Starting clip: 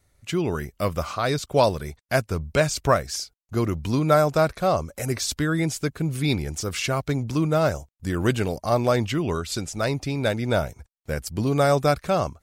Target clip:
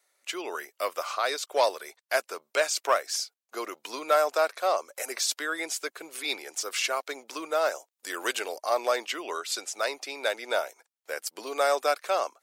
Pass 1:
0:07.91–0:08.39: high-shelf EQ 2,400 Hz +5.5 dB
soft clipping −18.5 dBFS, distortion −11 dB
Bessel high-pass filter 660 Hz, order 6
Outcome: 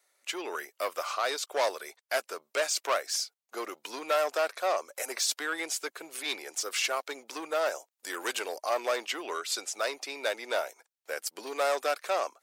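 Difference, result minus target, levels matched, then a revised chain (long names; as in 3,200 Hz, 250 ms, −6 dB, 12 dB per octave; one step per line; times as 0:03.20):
soft clipping: distortion +13 dB
0:07.91–0:08.39: high-shelf EQ 2,400 Hz +5.5 dB
soft clipping −8.5 dBFS, distortion −24 dB
Bessel high-pass filter 660 Hz, order 6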